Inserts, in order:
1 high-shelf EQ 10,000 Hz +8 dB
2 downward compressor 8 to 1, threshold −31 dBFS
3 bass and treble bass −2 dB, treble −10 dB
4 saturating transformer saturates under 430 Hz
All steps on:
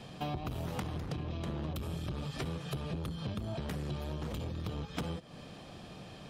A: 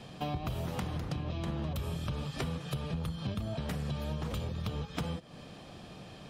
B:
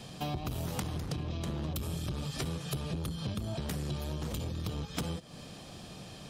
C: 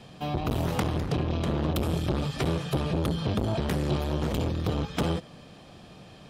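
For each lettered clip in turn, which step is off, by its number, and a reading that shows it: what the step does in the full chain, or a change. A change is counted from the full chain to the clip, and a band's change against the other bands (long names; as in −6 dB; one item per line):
4, change in momentary loudness spread +2 LU
3, 8 kHz band +8.0 dB
2, average gain reduction 9.0 dB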